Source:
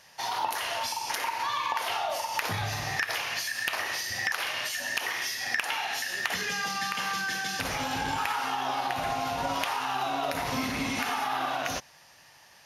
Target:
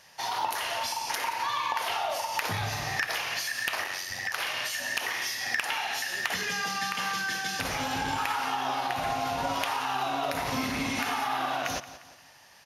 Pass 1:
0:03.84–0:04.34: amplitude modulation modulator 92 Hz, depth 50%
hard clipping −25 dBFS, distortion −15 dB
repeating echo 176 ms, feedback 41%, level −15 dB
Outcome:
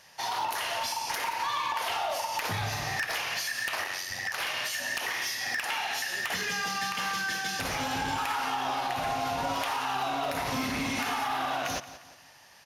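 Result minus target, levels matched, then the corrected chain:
hard clipping: distortion +19 dB
0:03.84–0:04.34: amplitude modulation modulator 92 Hz, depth 50%
hard clipping −16.5 dBFS, distortion −35 dB
repeating echo 176 ms, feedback 41%, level −15 dB

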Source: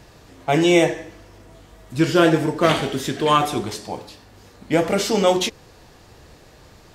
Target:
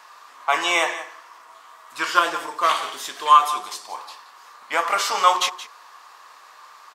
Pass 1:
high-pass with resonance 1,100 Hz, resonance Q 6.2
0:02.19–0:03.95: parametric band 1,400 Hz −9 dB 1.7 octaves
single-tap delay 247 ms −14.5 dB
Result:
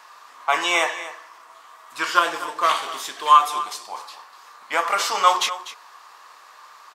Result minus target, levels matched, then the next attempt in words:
echo 73 ms late
high-pass with resonance 1,100 Hz, resonance Q 6.2
0:02.19–0:03.95: parametric band 1,400 Hz −9 dB 1.7 octaves
single-tap delay 174 ms −14.5 dB

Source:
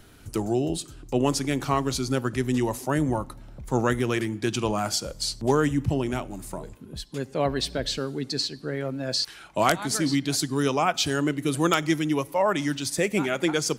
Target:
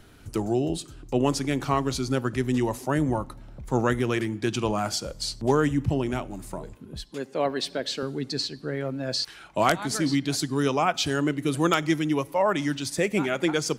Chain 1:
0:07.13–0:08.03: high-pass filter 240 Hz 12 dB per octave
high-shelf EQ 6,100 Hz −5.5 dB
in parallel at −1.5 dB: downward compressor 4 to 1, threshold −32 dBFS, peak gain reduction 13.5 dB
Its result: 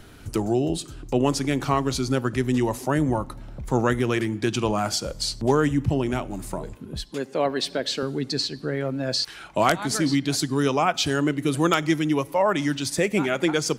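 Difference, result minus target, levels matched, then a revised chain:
downward compressor: peak gain reduction +13.5 dB
0:07.13–0:08.03: high-pass filter 240 Hz 12 dB per octave
high-shelf EQ 6,100 Hz −5.5 dB

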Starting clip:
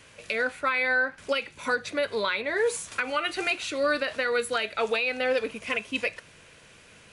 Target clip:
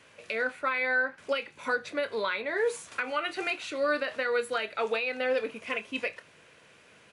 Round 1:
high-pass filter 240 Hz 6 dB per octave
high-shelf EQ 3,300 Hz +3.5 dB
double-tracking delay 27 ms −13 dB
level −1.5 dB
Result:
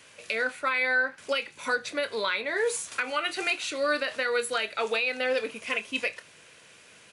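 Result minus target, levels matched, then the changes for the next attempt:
8,000 Hz band +8.0 dB
change: high-shelf EQ 3,300 Hz −8 dB

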